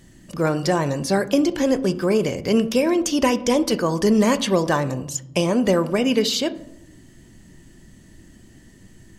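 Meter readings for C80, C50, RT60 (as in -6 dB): 19.5 dB, 16.5 dB, 0.85 s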